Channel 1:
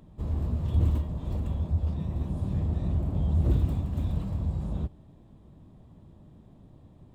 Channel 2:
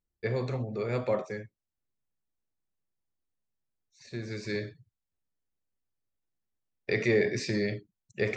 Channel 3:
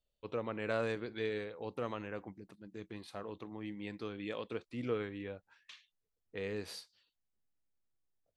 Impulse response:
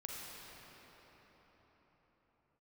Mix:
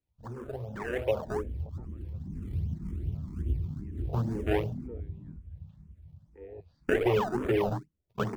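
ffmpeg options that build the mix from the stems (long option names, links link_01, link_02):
-filter_complex "[0:a]volume=-15dB,asplit=2[link_01][link_02];[link_02]volume=-8.5dB[link_03];[1:a]bandreject=frequency=50:width_type=h:width=6,bandreject=frequency=100:width_type=h:width=6,bandreject=frequency=150:width_type=h:width=6,adynamicequalizer=threshold=0.0112:dfrequency=400:dqfactor=2.1:tfrequency=400:tqfactor=2.1:attack=5:release=100:ratio=0.375:range=2.5:mode=boostabove:tftype=bell,flanger=delay=6:depth=5.5:regen=28:speed=0.65:shape=triangular,volume=0dB[link_04];[2:a]lowpass=2300,alimiter=level_in=5.5dB:limit=-24dB:level=0:latency=1:release=214,volume=-5.5dB,volume=-14dB,asplit=2[link_05][link_06];[link_06]apad=whole_len=315314[link_07];[link_01][link_07]sidechaincompress=threshold=-59dB:ratio=8:attack=9.9:release=168[link_08];[link_08][link_04]amix=inputs=2:normalize=0,acrusher=samples=28:mix=1:aa=0.000001:lfo=1:lforange=28:lforate=2.5,acompressor=threshold=-33dB:ratio=4,volume=0dB[link_09];[link_03]aecho=0:1:524|1048|1572|2096|2620|3144|3668|4192:1|0.53|0.281|0.149|0.0789|0.0418|0.0222|0.0117[link_10];[link_05][link_09][link_10]amix=inputs=3:normalize=0,afwtdn=0.00708,dynaudnorm=framelen=120:gausssize=17:maxgain=12.5dB,asplit=2[link_11][link_12];[link_12]afreqshift=2[link_13];[link_11][link_13]amix=inputs=2:normalize=1"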